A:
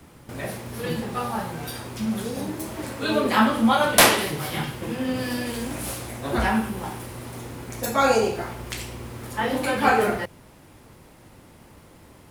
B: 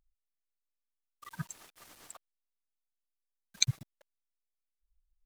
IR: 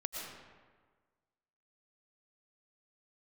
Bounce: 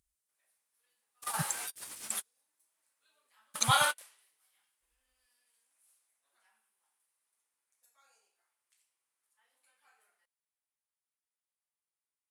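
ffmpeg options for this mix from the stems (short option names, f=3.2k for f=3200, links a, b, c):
-filter_complex "[0:a]highpass=1.2k,volume=-1.5dB[a];[1:a]highpass=68,equalizer=f=990:w=2:g=-15,alimiter=limit=-16.5dB:level=0:latency=1:release=118,volume=2dB,asplit=2[b][c];[c]apad=whole_len=542518[d];[a][d]sidechaingate=range=-44dB:threshold=-53dB:ratio=16:detection=peak[e];[e][b]amix=inputs=2:normalize=0,equalizer=f=9.3k:w=1:g=12.5"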